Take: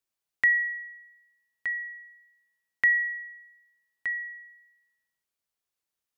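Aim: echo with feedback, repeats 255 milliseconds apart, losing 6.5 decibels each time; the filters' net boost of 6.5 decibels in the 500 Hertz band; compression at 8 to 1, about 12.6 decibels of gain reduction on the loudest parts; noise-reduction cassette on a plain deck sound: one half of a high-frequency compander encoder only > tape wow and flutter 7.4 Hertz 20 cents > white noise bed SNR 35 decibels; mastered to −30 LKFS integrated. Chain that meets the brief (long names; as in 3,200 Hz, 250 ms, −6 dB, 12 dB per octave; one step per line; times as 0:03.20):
parametric band 500 Hz +8 dB
downward compressor 8 to 1, threshold −31 dBFS
repeating echo 255 ms, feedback 47%, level −6.5 dB
one half of a high-frequency compander encoder only
tape wow and flutter 7.4 Hz 20 cents
white noise bed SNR 35 dB
level +6 dB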